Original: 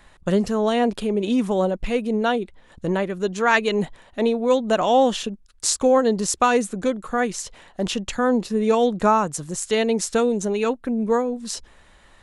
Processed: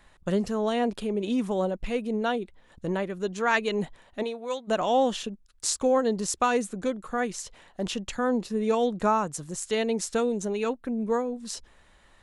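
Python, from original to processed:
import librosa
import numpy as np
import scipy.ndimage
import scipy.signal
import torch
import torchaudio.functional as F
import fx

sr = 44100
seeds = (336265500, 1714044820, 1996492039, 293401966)

y = fx.highpass(x, sr, hz=fx.line((4.22, 670.0), (4.67, 1400.0)), slope=6, at=(4.22, 4.67), fade=0.02)
y = y * 10.0 ** (-6.0 / 20.0)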